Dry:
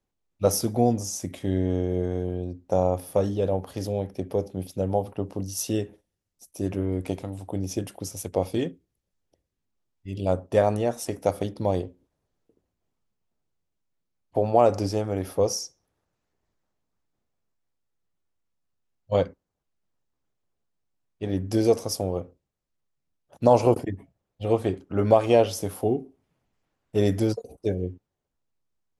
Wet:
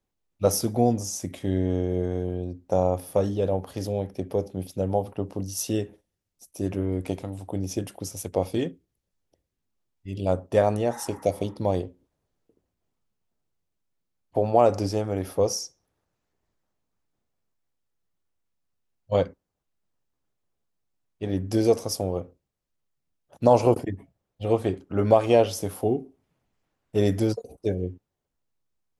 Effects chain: spectral repair 10.93–11.53, 770–2100 Hz both

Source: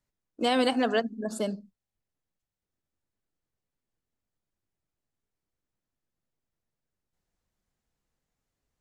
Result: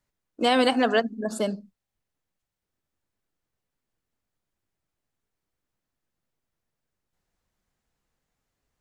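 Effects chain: bell 1400 Hz +3 dB 2.6 oct; gain +2.5 dB

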